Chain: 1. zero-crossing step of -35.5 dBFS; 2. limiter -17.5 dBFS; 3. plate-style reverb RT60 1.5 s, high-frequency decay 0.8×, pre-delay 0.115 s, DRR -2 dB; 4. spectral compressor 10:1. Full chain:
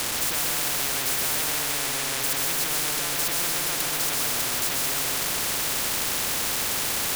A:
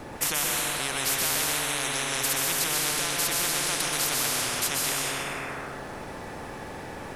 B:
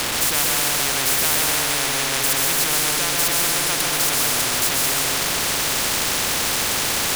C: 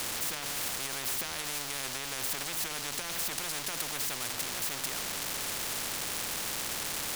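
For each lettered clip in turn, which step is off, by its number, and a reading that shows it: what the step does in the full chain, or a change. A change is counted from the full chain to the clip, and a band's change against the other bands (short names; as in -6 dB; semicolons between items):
1, distortion -15 dB; 2, momentary loudness spread change +1 LU; 3, loudness change -9.0 LU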